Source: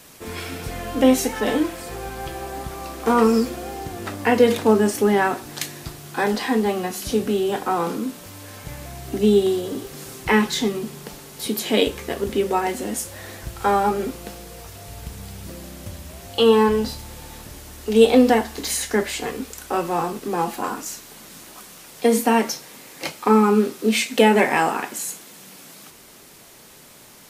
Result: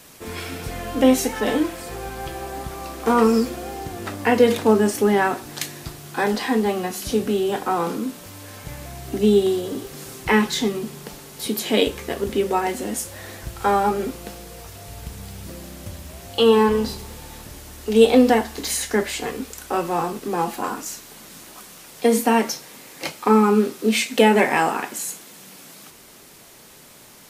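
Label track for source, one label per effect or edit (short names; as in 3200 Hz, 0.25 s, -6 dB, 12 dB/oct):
15.140000	17.170000	warbling echo 99 ms, feedback 63%, depth 185 cents, level -21.5 dB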